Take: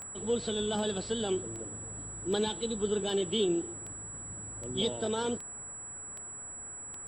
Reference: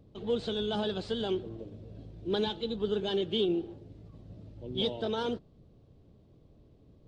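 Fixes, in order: de-click; notch 7800 Hz, Q 30; noise print and reduce 15 dB

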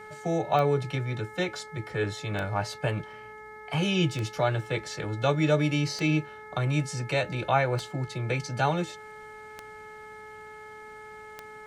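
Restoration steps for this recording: de-click; de-hum 428.8 Hz, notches 5

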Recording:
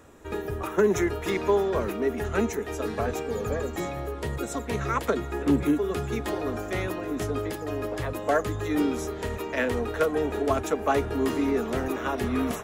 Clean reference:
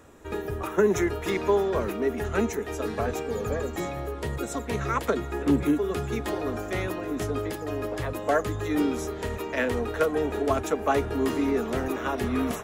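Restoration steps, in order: clip repair -13 dBFS

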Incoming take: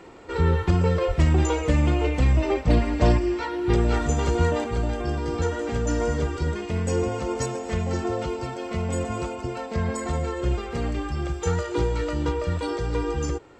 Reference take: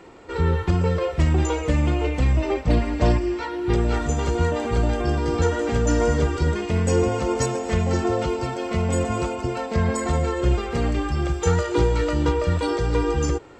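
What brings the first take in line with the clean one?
de-plosive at 1.07; gain 0 dB, from 4.64 s +4.5 dB

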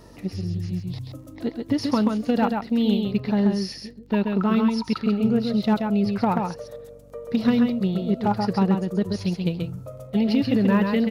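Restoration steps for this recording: clip repair -11.5 dBFS; de-click; de-hum 47.9 Hz, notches 6; inverse comb 0.133 s -4.5 dB

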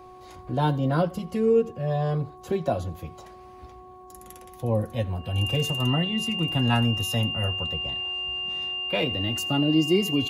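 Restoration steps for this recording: de-hum 368.4 Hz, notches 3; notch 2800 Hz, Q 30; inverse comb 83 ms -23 dB

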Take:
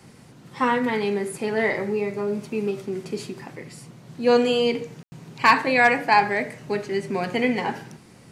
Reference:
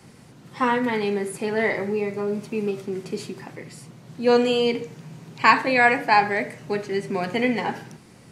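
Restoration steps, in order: clip repair -7 dBFS; room tone fill 5.03–5.12

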